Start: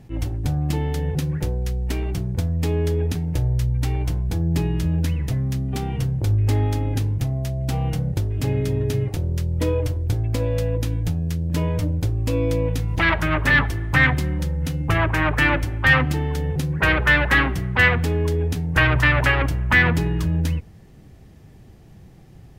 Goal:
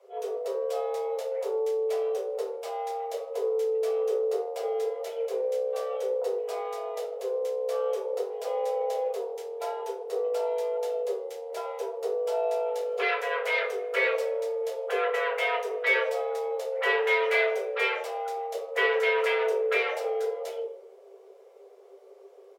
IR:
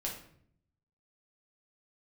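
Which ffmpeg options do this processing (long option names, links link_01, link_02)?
-filter_complex "[0:a]asplit=2[link_01][link_02];[link_02]adelay=150,highpass=300,lowpass=3400,asoftclip=type=hard:threshold=-12.5dB,volume=-22dB[link_03];[link_01][link_03]amix=inputs=2:normalize=0[link_04];[1:a]atrim=start_sample=2205,asetrate=74970,aresample=44100[link_05];[link_04][link_05]afir=irnorm=-1:irlink=0,afreqshift=380,volume=-6.5dB"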